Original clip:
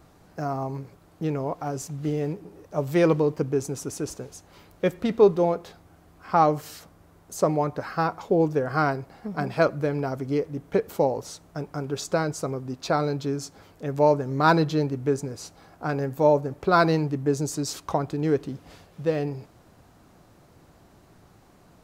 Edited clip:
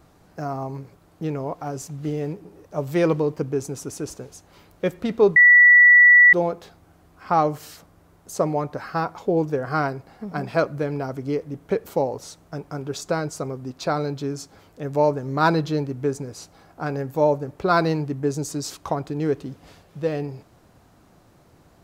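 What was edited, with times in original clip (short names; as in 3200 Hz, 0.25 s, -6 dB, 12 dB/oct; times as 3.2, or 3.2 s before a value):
5.36 add tone 1950 Hz -8 dBFS 0.97 s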